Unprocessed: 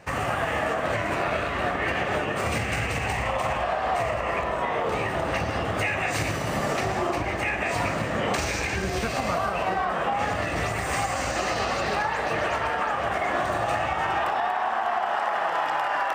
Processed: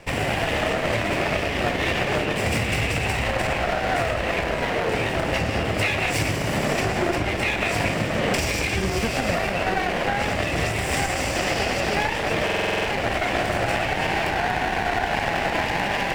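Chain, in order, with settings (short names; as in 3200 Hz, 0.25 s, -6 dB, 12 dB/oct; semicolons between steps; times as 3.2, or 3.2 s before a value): minimum comb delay 0.39 ms; stuck buffer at 12.45, samples 2048, times 8; gain +4.5 dB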